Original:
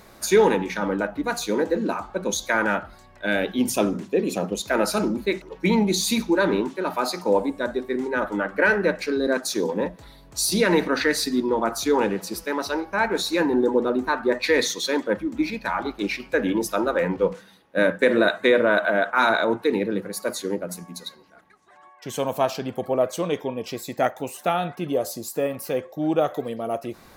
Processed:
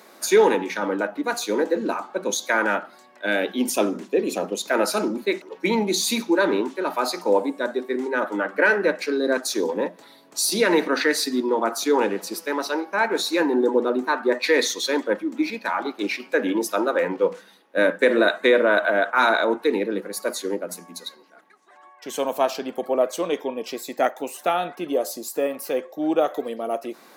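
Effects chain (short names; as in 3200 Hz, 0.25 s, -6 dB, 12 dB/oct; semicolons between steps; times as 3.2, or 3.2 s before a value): HPF 240 Hz 24 dB/oct; gain +1 dB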